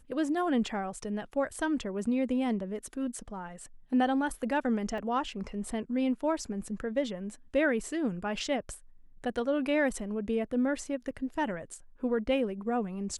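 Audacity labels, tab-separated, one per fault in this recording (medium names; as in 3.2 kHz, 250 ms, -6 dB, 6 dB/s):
4.980000	4.980000	dropout 2.7 ms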